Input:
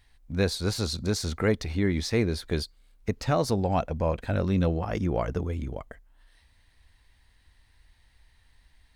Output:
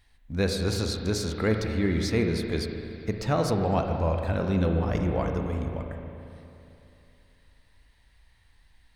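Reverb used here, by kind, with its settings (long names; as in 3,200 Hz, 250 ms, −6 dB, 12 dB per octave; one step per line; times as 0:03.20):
spring reverb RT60 2.9 s, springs 36/55 ms, chirp 45 ms, DRR 3 dB
level −1 dB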